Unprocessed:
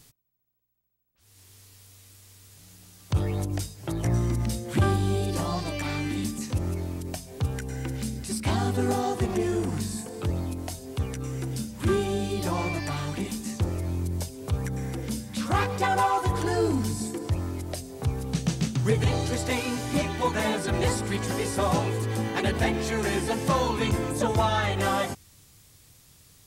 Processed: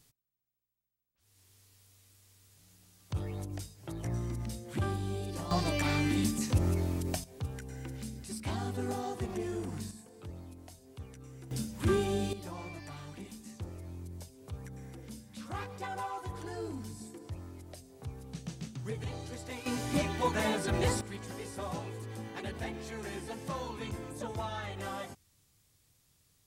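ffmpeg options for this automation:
-af "asetnsamples=n=441:p=0,asendcmd='5.51 volume volume 0dB;7.24 volume volume -10dB;9.91 volume volume -17dB;11.51 volume volume -4dB;12.33 volume volume -15dB;19.66 volume volume -4.5dB;21.01 volume volume -14dB',volume=0.299"

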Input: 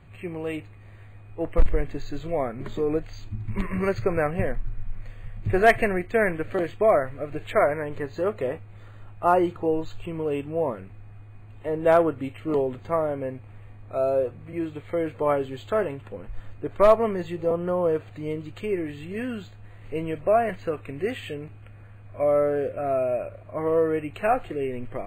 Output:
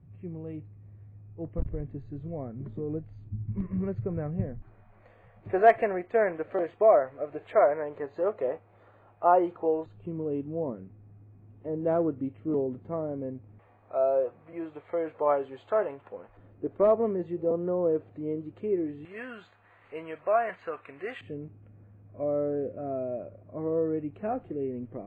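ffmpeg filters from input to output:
-af "asetnsamples=n=441:p=0,asendcmd='4.62 bandpass f 660;9.86 bandpass f 230;13.59 bandpass f 780;16.37 bandpass f 320;19.05 bandpass f 1200;21.21 bandpass f 230',bandpass=f=140:t=q:w=1.1:csg=0"

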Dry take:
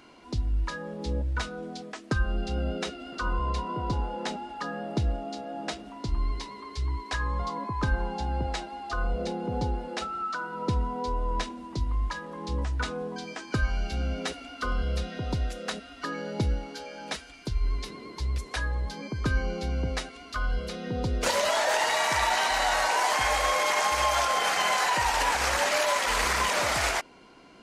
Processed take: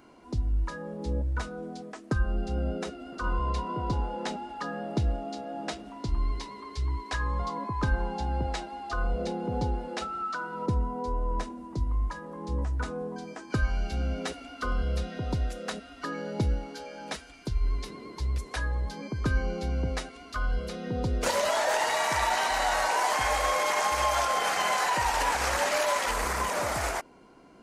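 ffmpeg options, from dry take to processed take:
-af "asetnsamples=n=441:p=0,asendcmd='3.24 equalizer g -2.5;10.66 equalizer g -11.5;13.5 equalizer g -4;26.11 equalizer g -10',equalizer=f=3400:t=o:w=2.1:g=-9"

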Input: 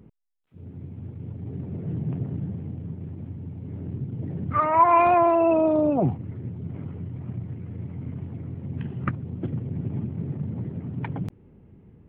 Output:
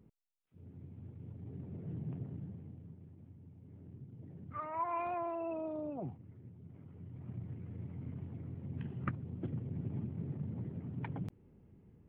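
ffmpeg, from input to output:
-af "volume=0.708,afade=t=out:st=2.06:d=1.04:silence=0.446684,afade=t=in:st=6.86:d=0.61:silence=0.334965"

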